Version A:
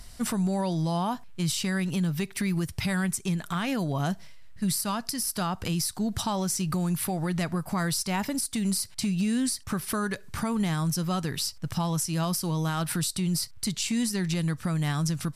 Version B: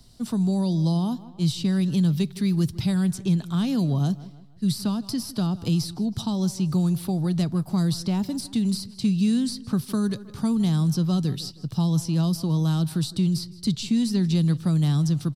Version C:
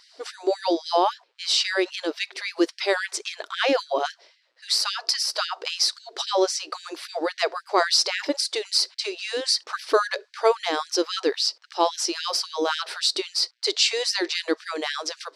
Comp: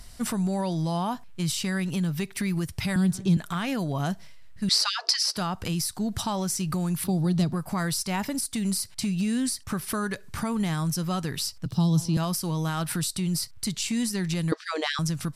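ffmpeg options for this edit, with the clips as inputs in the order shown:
-filter_complex "[1:a]asplit=3[a][b][c];[2:a]asplit=2[d][e];[0:a]asplit=6[f][g][h][i][j][k];[f]atrim=end=2.962[l];[a]atrim=start=2.958:end=3.372[m];[g]atrim=start=3.368:end=4.692[n];[d]atrim=start=4.688:end=5.362[o];[h]atrim=start=5.358:end=7.042[p];[b]atrim=start=7.038:end=7.532[q];[i]atrim=start=7.528:end=11.662[r];[c]atrim=start=11.658:end=12.172[s];[j]atrim=start=12.168:end=14.522[t];[e]atrim=start=14.518:end=14.992[u];[k]atrim=start=14.988[v];[l][m]acrossfade=d=0.004:c1=hsin:c2=hsin[w];[w][n]acrossfade=d=0.004:c1=hsin:c2=hsin[x];[x][o]acrossfade=d=0.004:c1=hsin:c2=hsin[y];[y][p]acrossfade=d=0.004:c1=hsin:c2=hsin[z];[z][q]acrossfade=d=0.004:c1=hsin:c2=hsin[aa];[aa][r]acrossfade=d=0.004:c1=hsin:c2=hsin[ab];[ab][s]acrossfade=d=0.004:c1=hsin:c2=hsin[ac];[ac][t]acrossfade=d=0.004:c1=hsin:c2=hsin[ad];[ad][u]acrossfade=d=0.004:c1=hsin:c2=hsin[ae];[ae][v]acrossfade=d=0.004:c1=hsin:c2=hsin"

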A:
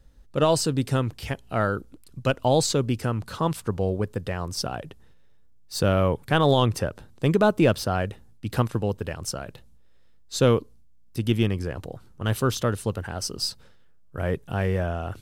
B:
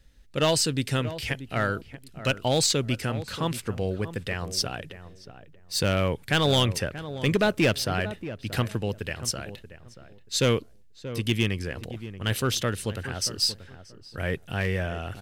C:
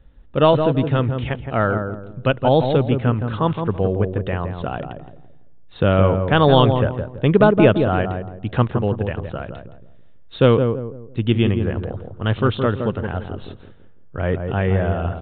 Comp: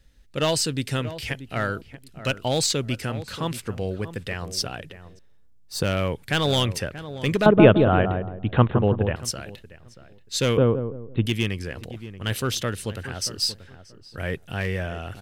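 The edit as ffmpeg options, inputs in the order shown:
-filter_complex "[2:a]asplit=2[a][b];[1:a]asplit=4[c][d][e][f];[c]atrim=end=5.192[g];[0:a]atrim=start=5.188:end=5.832[h];[d]atrim=start=5.828:end=7.462[i];[a]atrim=start=7.458:end=9.162[j];[e]atrim=start=9.158:end=10.572[k];[b]atrim=start=10.568:end=11.262[l];[f]atrim=start=11.258[m];[g][h]acrossfade=d=0.004:c1=hsin:c2=hsin[n];[n][i]acrossfade=d=0.004:c1=hsin:c2=hsin[o];[o][j]acrossfade=d=0.004:c1=hsin:c2=hsin[p];[p][k]acrossfade=d=0.004:c1=hsin:c2=hsin[q];[q][l]acrossfade=d=0.004:c1=hsin:c2=hsin[r];[r][m]acrossfade=d=0.004:c1=hsin:c2=hsin"

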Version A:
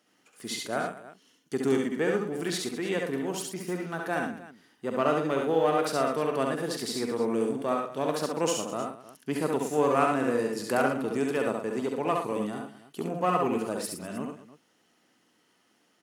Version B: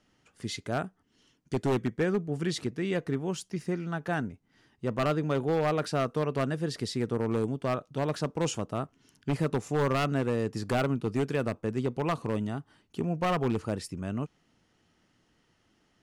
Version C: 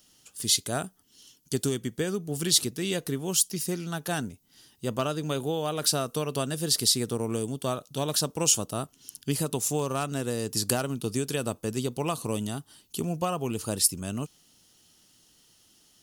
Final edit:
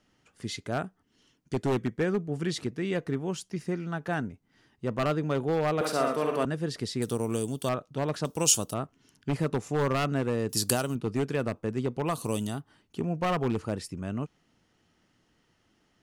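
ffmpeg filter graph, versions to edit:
-filter_complex "[2:a]asplit=4[a][b][c][d];[1:a]asplit=6[e][f][g][h][i][j];[e]atrim=end=5.812[k];[0:a]atrim=start=5.808:end=6.452[l];[f]atrim=start=6.448:end=7.022[m];[a]atrim=start=7.018:end=7.692[n];[g]atrim=start=7.688:end=8.252[o];[b]atrim=start=8.248:end=8.742[p];[h]atrim=start=8.738:end=10.492[q];[c]atrim=start=10.488:end=10.952[r];[i]atrim=start=10.948:end=12.25[s];[d]atrim=start=12.01:end=12.65[t];[j]atrim=start=12.41[u];[k][l]acrossfade=d=0.004:c1=hsin:c2=hsin[v];[v][m]acrossfade=d=0.004:c1=hsin:c2=hsin[w];[w][n]acrossfade=d=0.004:c1=hsin:c2=hsin[x];[x][o]acrossfade=d=0.004:c1=hsin:c2=hsin[y];[y][p]acrossfade=d=0.004:c1=hsin:c2=hsin[z];[z][q]acrossfade=d=0.004:c1=hsin:c2=hsin[aa];[aa][r]acrossfade=d=0.004:c1=hsin:c2=hsin[ab];[ab][s]acrossfade=d=0.004:c1=hsin:c2=hsin[ac];[ac][t]acrossfade=d=0.24:c1=tri:c2=tri[ad];[ad][u]acrossfade=d=0.24:c1=tri:c2=tri"

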